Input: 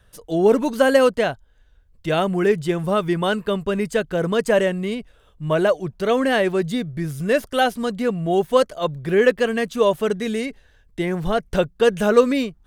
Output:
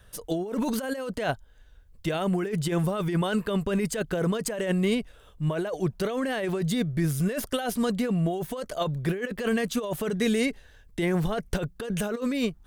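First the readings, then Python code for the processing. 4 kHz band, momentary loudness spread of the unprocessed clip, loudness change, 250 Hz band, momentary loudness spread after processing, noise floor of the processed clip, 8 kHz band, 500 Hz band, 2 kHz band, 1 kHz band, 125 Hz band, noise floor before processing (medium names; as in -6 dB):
-6.5 dB, 10 LU, -8.0 dB, -4.0 dB, 6 LU, -55 dBFS, +0.5 dB, -11.0 dB, -8.5 dB, -10.5 dB, -0.5 dB, -56 dBFS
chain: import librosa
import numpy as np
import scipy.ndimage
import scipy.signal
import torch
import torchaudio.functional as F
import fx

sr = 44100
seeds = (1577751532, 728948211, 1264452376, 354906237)

y = fx.high_shelf(x, sr, hz=7100.0, db=5.5)
y = fx.over_compress(y, sr, threshold_db=-24.0, ratio=-1.0)
y = F.gain(torch.from_numpy(y), -3.0).numpy()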